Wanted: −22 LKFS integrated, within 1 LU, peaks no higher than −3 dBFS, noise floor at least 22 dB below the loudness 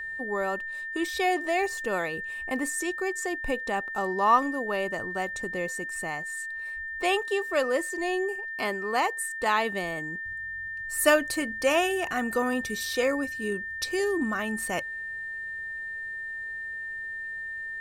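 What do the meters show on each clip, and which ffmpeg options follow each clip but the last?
interfering tone 1,800 Hz; level of the tone −33 dBFS; integrated loudness −28.5 LKFS; sample peak −7.0 dBFS; target loudness −22.0 LKFS
→ -af "bandreject=frequency=1800:width=30"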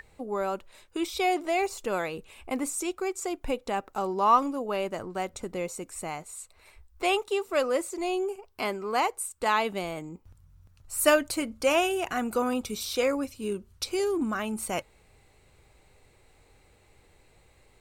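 interfering tone none found; integrated loudness −29.0 LKFS; sample peak −6.5 dBFS; target loudness −22.0 LKFS
→ -af "volume=7dB,alimiter=limit=-3dB:level=0:latency=1"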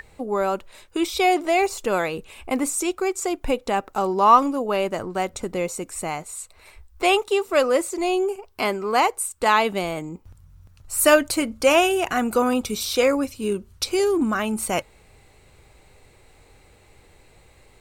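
integrated loudness −22.0 LKFS; sample peak −3.0 dBFS; background noise floor −54 dBFS

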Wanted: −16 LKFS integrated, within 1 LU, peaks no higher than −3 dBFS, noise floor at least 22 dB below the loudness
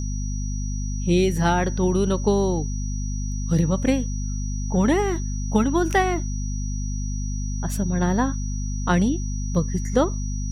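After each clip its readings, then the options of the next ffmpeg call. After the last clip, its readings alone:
mains hum 50 Hz; hum harmonics up to 250 Hz; level of the hum −24 dBFS; interfering tone 5,800 Hz; level of the tone −38 dBFS; integrated loudness −24.0 LKFS; sample peak −7.0 dBFS; target loudness −16.0 LKFS
→ -af "bandreject=frequency=50:width_type=h:width=4,bandreject=frequency=100:width_type=h:width=4,bandreject=frequency=150:width_type=h:width=4,bandreject=frequency=200:width_type=h:width=4,bandreject=frequency=250:width_type=h:width=4"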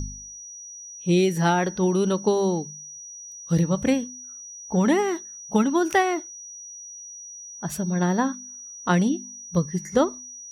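mains hum none found; interfering tone 5,800 Hz; level of the tone −38 dBFS
→ -af "bandreject=frequency=5800:width=30"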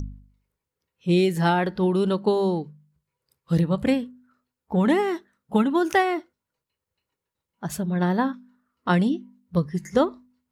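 interfering tone none found; integrated loudness −24.0 LKFS; sample peak −8.5 dBFS; target loudness −16.0 LKFS
→ -af "volume=8dB,alimiter=limit=-3dB:level=0:latency=1"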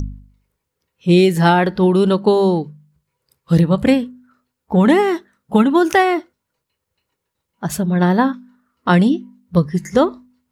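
integrated loudness −16.0 LKFS; sample peak −3.0 dBFS; background noise floor −78 dBFS

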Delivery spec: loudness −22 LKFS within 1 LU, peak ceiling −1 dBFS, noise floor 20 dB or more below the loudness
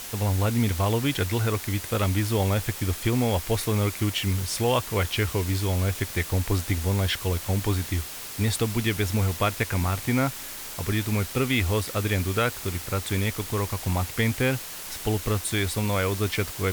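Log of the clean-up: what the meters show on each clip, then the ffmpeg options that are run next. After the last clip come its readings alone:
background noise floor −37 dBFS; target noise floor −46 dBFS; integrated loudness −26.0 LKFS; sample peak −10.5 dBFS; target loudness −22.0 LKFS
→ -af "afftdn=noise_reduction=9:noise_floor=-37"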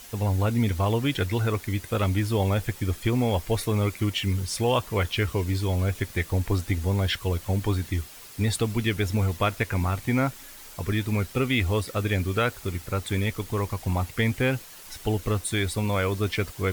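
background noise floor −45 dBFS; target noise floor −47 dBFS
→ -af "afftdn=noise_reduction=6:noise_floor=-45"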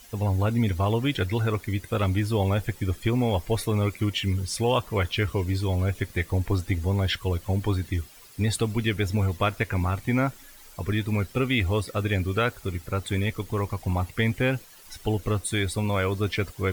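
background noise floor −49 dBFS; integrated loudness −26.5 LKFS; sample peak −10.5 dBFS; target loudness −22.0 LKFS
→ -af "volume=4.5dB"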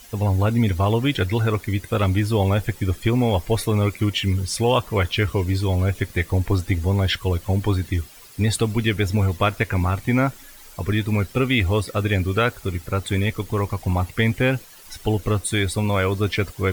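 integrated loudness −22.0 LKFS; sample peak −6.0 dBFS; background noise floor −45 dBFS

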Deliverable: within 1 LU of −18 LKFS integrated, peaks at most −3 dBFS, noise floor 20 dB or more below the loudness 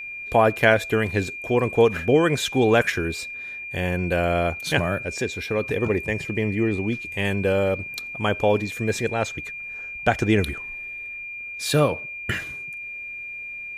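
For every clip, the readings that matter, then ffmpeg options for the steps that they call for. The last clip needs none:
interfering tone 2,400 Hz; level of the tone −32 dBFS; integrated loudness −23.5 LKFS; sample peak −3.0 dBFS; target loudness −18.0 LKFS
→ -af "bandreject=frequency=2400:width=30"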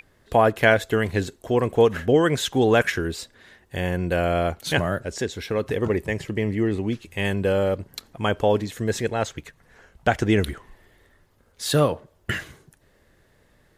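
interfering tone none found; integrated loudness −23.5 LKFS; sample peak −3.5 dBFS; target loudness −18.0 LKFS
→ -af "volume=5.5dB,alimiter=limit=-3dB:level=0:latency=1"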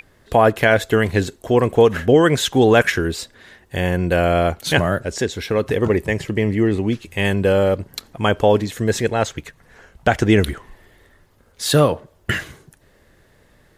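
integrated loudness −18.5 LKFS; sample peak −3.0 dBFS; background noise floor −55 dBFS

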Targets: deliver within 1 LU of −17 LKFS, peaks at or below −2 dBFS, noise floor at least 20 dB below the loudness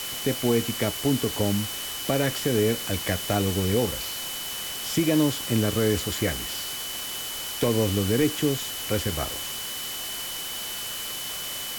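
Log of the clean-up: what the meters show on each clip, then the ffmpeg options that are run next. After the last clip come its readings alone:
interfering tone 3,000 Hz; level of the tone −36 dBFS; background noise floor −33 dBFS; target noise floor −46 dBFS; integrated loudness −26.0 LKFS; sample peak −10.5 dBFS; target loudness −17.0 LKFS
→ -af "bandreject=frequency=3000:width=30"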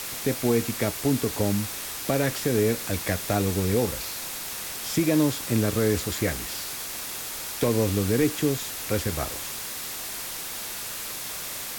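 interfering tone none found; background noise floor −35 dBFS; target noise floor −47 dBFS
→ -af "afftdn=noise_reduction=12:noise_floor=-35"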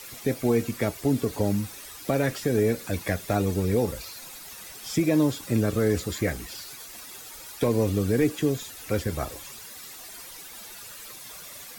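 background noise floor −43 dBFS; target noise floor −47 dBFS
→ -af "afftdn=noise_reduction=6:noise_floor=-43"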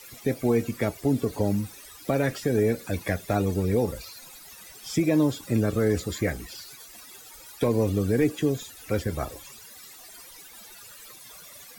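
background noise floor −47 dBFS; integrated loudness −26.5 LKFS; sample peak −12.0 dBFS; target loudness −17.0 LKFS
→ -af "volume=9.5dB"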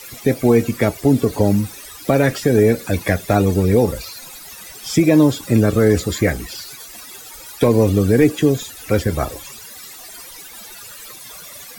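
integrated loudness −17.0 LKFS; sample peak −2.5 dBFS; background noise floor −38 dBFS

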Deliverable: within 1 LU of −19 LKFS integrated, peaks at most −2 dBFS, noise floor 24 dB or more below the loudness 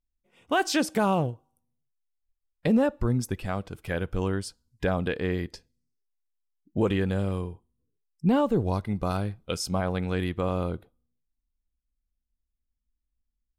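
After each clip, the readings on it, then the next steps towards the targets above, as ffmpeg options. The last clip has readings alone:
integrated loudness −28.0 LKFS; sample peak −13.0 dBFS; target loudness −19.0 LKFS
→ -af "volume=9dB"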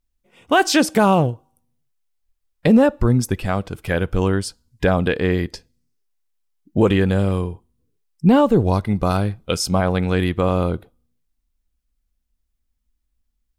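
integrated loudness −19.0 LKFS; sample peak −4.0 dBFS; background noise floor −74 dBFS

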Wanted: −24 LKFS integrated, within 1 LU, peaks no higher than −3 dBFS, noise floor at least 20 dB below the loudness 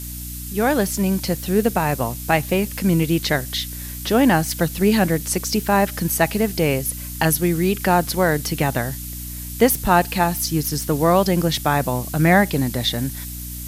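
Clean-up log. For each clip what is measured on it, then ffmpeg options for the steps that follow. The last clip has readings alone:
mains hum 60 Hz; hum harmonics up to 300 Hz; level of the hum −31 dBFS; background noise floor −31 dBFS; target noise floor −40 dBFS; integrated loudness −20.0 LKFS; sample peak −2.5 dBFS; target loudness −24.0 LKFS
→ -af "bandreject=frequency=60:width_type=h:width=6,bandreject=frequency=120:width_type=h:width=6,bandreject=frequency=180:width_type=h:width=6,bandreject=frequency=240:width_type=h:width=6,bandreject=frequency=300:width_type=h:width=6"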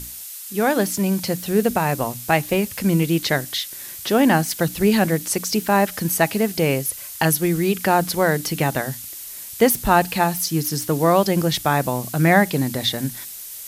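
mains hum none found; background noise floor −35 dBFS; target noise floor −40 dBFS
→ -af "afftdn=noise_reduction=6:noise_floor=-35"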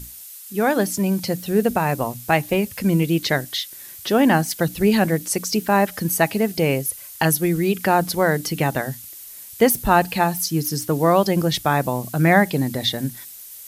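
background noise floor −39 dBFS; target noise floor −41 dBFS
→ -af "afftdn=noise_reduction=6:noise_floor=-39"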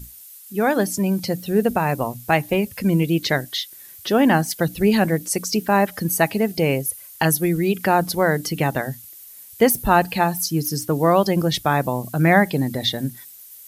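background noise floor −43 dBFS; integrated loudness −20.5 LKFS; sample peak −3.0 dBFS; target loudness −24.0 LKFS
→ -af "volume=-3.5dB"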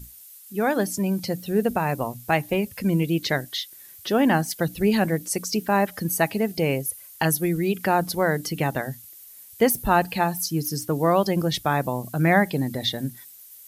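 integrated loudness −24.0 LKFS; sample peak −6.5 dBFS; background noise floor −46 dBFS

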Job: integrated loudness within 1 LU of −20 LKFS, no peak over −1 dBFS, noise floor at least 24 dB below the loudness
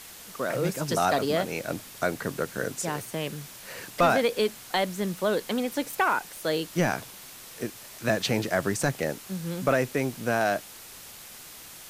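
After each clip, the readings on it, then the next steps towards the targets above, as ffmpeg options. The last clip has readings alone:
background noise floor −46 dBFS; target noise floor −52 dBFS; integrated loudness −28.0 LKFS; sample peak −12.0 dBFS; target loudness −20.0 LKFS
→ -af "afftdn=noise_reduction=6:noise_floor=-46"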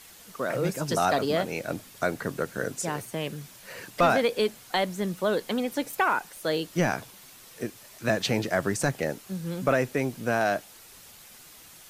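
background noise floor −50 dBFS; target noise floor −52 dBFS
→ -af "afftdn=noise_reduction=6:noise_floor=-50"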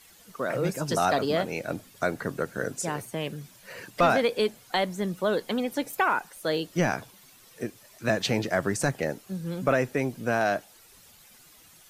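background noise floor −55 dBFS; integrated loudness −28.0 LKFS; sample peak −12.0 dBFS; target loudness −20.0 LKFS
→ -af "volume=8dB"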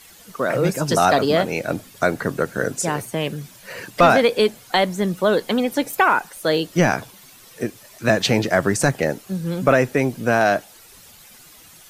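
integrated loudness −20.0 LKFS; sample peak −4.0 dBFS; background noise floor −47 dBFS

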